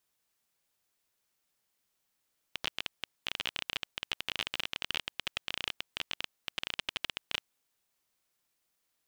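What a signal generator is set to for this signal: random clicks 21/s -15 dBFS 4.94 s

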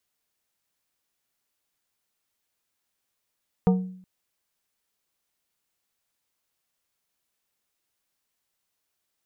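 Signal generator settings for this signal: glass hit plate, length 0.37 s, lowest mode 185 Hz, modes 5, decay 0.62 s, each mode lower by 6 dB, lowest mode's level -14 dB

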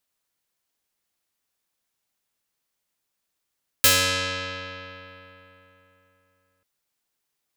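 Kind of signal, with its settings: plucked string F#2, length 2.79 s, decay 3.48 s, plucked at 0.25, medium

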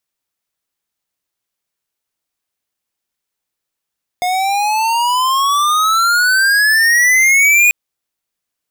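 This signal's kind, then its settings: gliding synth tone square, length 3.49 s, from 716 Hz, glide +21.5 st, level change +7 dB, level -9 dB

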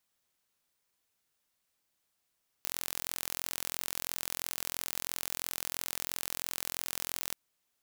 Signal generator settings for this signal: pulse train 43/s, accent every 0, -8 dBFS 4.68 s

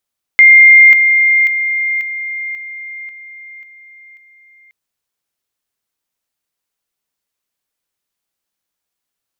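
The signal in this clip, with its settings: level ladder 2110 Hz -1.5 dBFS, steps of -6 dB, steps 8, 0.54 s 0.00 s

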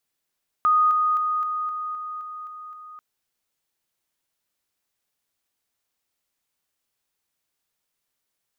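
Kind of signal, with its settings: level ladder 1240 Hz -15 dBFS, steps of -3 dB, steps 9, 0.26 s 0.00 s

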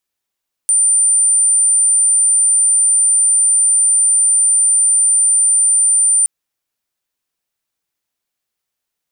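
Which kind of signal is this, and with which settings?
tone sine 9110 Hz -9 dBFS 5.57 s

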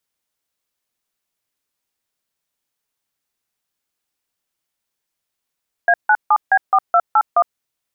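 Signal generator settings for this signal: DTMF "A97B4281", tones 59 ms, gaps 0.153 s, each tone -12 dBFS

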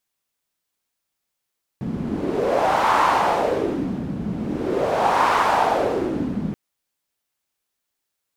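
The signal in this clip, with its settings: wind-like swept noise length 4.73 s, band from 190 Hz, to 1000 Hz, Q 3.1, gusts 2, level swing 9 dB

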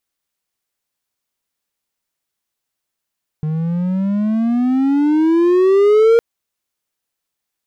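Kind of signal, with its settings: gliding synth tone triangle, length 2.76 s, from 152 Hz, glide +19.5 st, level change +10 dB, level -5 dB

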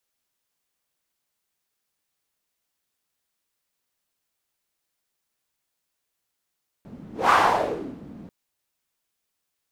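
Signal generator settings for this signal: whoosh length 1.44 s, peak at 0.46, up 0.20 s, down 0.78 s, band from 210 Hz, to 1100 Hz, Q 3.2, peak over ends 23.5 dB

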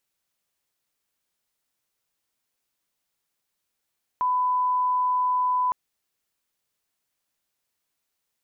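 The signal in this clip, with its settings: line-up tone -20 dBFS 1.51 s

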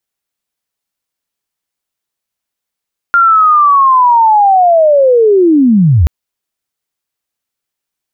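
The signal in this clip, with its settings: chirp linear 1400 Hz -> 65 Hz -4 dBFS -> -4 dBFS 2.93 s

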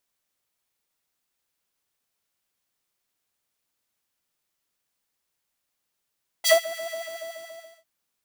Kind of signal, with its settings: synth patch with filter wobble E5, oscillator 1 square, oscillator 2 saw, oscillator 2 level -8 dB, sub -30 dB, noise -9.5 dB, filter highpass, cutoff 350 Hz, Q 1.4, attack 31 ms, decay 0.13 s, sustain -20.5 dB, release 1.04 s, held 0.36 s, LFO 7 Hz, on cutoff 1.9 oct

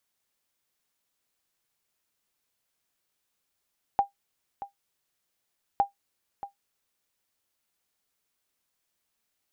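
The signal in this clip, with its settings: sonar ping 800 Hz, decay 0.13 s, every 1.81 s, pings 2, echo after 0.63 s, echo -14.5 dB -13.5 dBFS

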